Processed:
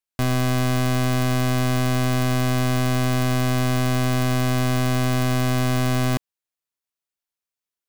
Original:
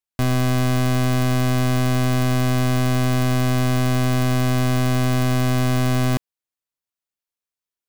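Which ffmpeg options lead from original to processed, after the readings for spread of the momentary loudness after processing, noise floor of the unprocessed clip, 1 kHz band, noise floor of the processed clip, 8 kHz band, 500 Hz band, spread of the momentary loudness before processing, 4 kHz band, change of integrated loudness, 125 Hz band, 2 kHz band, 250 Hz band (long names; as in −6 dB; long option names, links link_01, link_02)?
0 LU, below −85 dBFS, −0.5 dB, below −85 dBFS, 0.0 dB, −1.0 dB, 0 LU, 0.0 dB, −1.5 dB, −2.5 dB, 0.0 dB, −2.0 dB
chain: -af "lowshelf=frequency=400:gain=-2.5"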